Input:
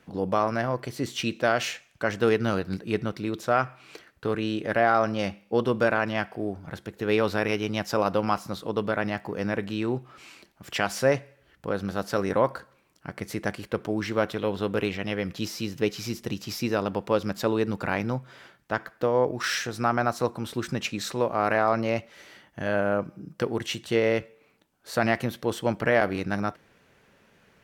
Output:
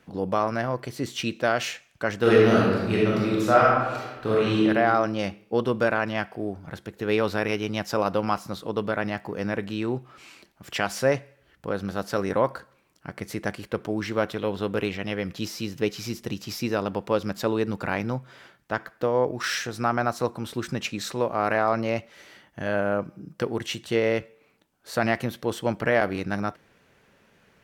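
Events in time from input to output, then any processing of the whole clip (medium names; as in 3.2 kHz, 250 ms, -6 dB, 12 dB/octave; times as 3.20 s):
2.18–4.64 s: reverb throw, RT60 1.3 s, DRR -5.5 dB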